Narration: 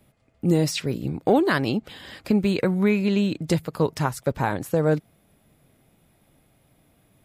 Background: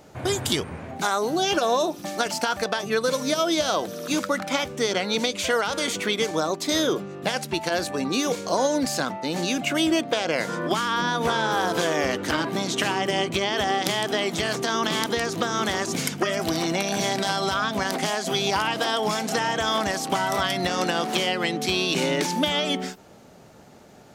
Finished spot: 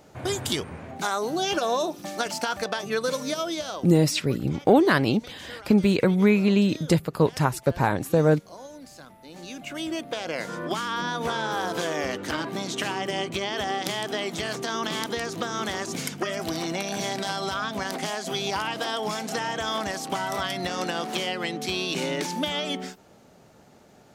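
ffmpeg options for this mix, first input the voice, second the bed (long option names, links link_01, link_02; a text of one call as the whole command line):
ffmpeg -i stem1.wav -i stem2.wav -filter_complex "[0:a]adelay=3400,volume=1.5dB[link_01];[1:a]volume=13dB,afade=type=out:start_time=3.11:duration=0.95:silence=0.133352,afade=type=in:start_time=9.18:duration=1.43:silence=0.158489[link_02];[link_01][link_02]amix=inputs=2:normalize=0" out.wav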